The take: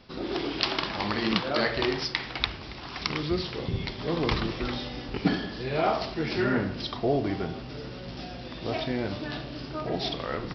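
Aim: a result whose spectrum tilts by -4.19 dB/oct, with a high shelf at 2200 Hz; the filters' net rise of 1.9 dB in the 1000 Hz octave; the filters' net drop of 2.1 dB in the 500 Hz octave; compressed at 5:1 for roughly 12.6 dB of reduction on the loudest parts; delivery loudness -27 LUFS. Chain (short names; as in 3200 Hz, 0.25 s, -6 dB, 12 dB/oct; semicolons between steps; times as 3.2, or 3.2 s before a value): bell 500 Hz -4 dB; bell 1000 Hz +5.5 dB; high shelf 2200 Hz -6.5 dB; compressor 5:1, threshold -34 dBFS; gain +11 dB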